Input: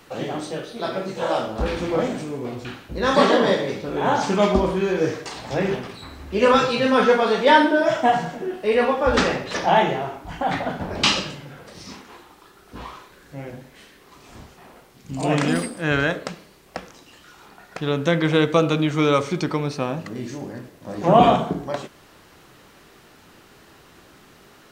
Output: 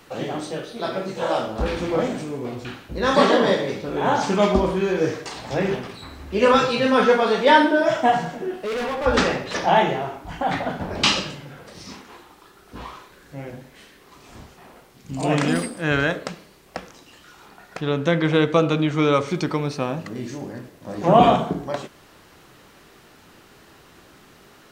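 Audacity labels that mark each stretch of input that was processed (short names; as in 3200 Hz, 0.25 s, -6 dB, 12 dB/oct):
8.510000	9.060000	hard clip -24 dBFS
17.810000	19.280000	high shelf 6300 Hz -7.5 dB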